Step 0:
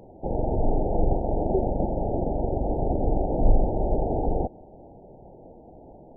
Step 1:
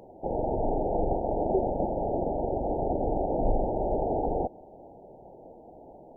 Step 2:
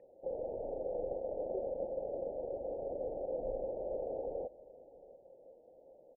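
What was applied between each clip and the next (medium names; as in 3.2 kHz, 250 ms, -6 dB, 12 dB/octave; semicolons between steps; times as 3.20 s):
bass shelf 250 Hz -11.5 dB; trim +2 dB
cascade formant filter e; delay 676 ms -20 dB; trim -2 dB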